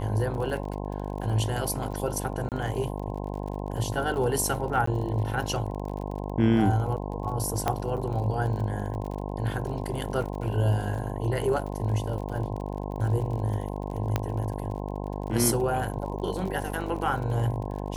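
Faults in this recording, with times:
mains buzz 50 Hz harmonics 21 −33 dBFS
surface crackle 40 per second −35 dBFS
0:02.49–0:02.52: drop-out 28 ms
0:04.86–0:04.87: drop-out
0:07.68: click −11 dBFS
0:14.16: click −11 dBFS

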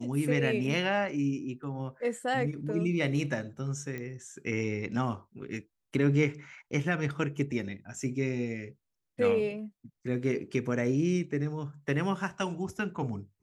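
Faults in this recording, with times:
0:03.98: click −25 dBFS

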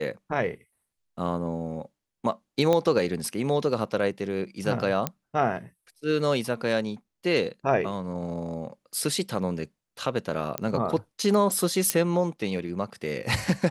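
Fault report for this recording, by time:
0:02.73: click −11 dBFS
0:05.07: click −10 dBFS
0:10.58: click −11 dBFS
0:11.90: click −6 dBFS

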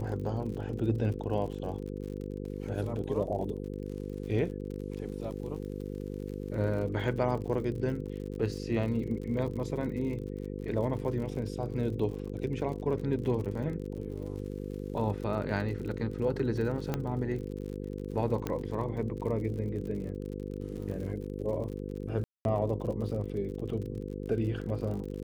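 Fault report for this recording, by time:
mains buzz 50 Hz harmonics 10 −38 dBFS
surface crackle 52 per second −39 dBFS
0:16.94: click −17 dBFS
0:18.47: click −18 dBFS
0:22.24–0:22.45: drop-out 211 ms

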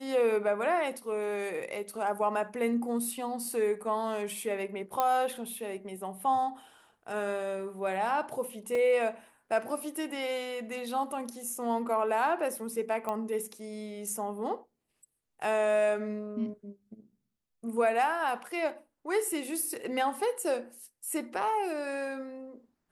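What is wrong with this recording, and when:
0:05.00: click −14 dBFS
0:08.75: drop-out 2.8 ms
0:13.09: click −20 dBFS

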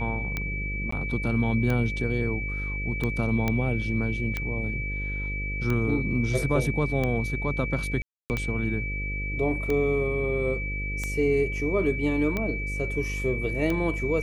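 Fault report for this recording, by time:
mains buzz 50 Hz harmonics 11 −32 dBFS
scratch tick 45 rpm −15 dBFS
whistle 2,300 Hz −32 dBFS
0:00.91–0:00.92: drop-out 14 ms
0:03.48: click −12 dBFS
0:08.02–0:08.30: drop-out 279 ms

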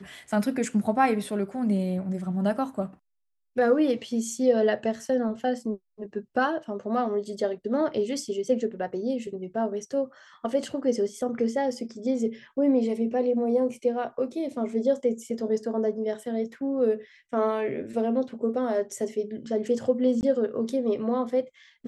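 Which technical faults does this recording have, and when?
0:20.21–0:20.23: drop-out 19 ms

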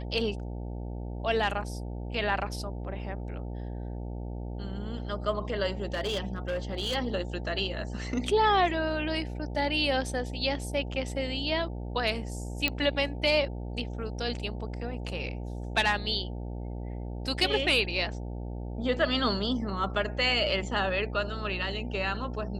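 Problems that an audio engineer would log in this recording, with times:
mains buzz 60 Hz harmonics 15 −36 dBFS
0:05.94–0:06.96: clipping −26 dBFS
0:12.68: click −12 dBFS

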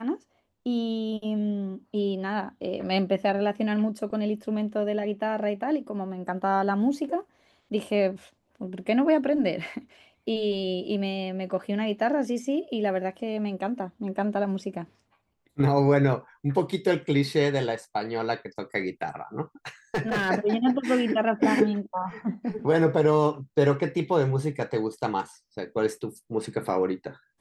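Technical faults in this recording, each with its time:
0:19.94–0:20.30: clipping −22.5 dBFS

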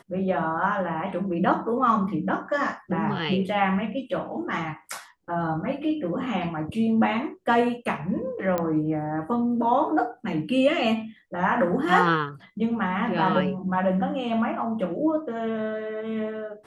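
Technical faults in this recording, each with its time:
0:08.58: click −13 dBFS

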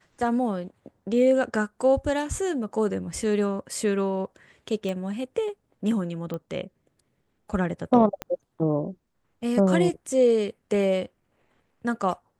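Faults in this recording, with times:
0:04.89: click −20 dBFS
0:06.34: click −21 dBFS
0:08.22: click −16 dBFS

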